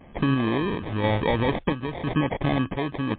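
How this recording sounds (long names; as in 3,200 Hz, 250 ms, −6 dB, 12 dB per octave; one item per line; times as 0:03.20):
sample-and-hold tremolo 2.9 Hz
aliases and images of a low sample rate 1,400 Hz, jitter 0%
MP3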